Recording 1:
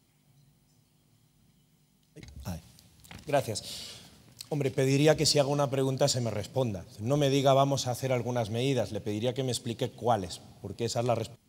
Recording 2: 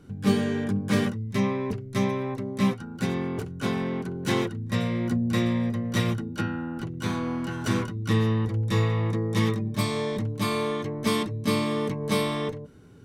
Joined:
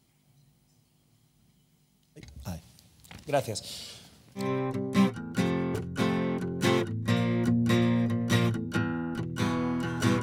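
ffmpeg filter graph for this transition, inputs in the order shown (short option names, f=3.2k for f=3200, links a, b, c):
-filter_complex "[0:a]apad=whole_dur=10.22,atrim=end=10.22,atrim=end=4.51,asetpts=PTS-STARTPTS[a];[1:a]atrim=start=1.99:end=7.86,asetpts=PTS-STARTPTS[b];[a][b]acrossfade=d=0.16:c1=tri:c2=tri"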